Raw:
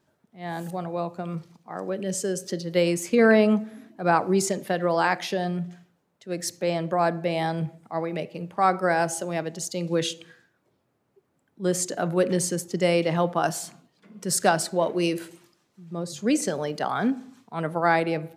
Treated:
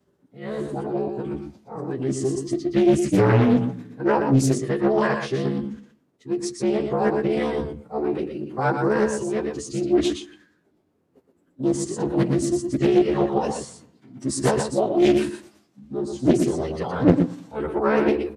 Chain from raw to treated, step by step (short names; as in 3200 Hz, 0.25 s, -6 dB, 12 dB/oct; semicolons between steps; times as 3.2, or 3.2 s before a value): short-time reversal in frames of 30 ms; bell 280 Hz +14 dB 0.99 oct; formant-preserving pitch shift -7.5 st; on a send: echo 0.12 s -6 dB; on the sum: Doppler distortion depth 0.89 ms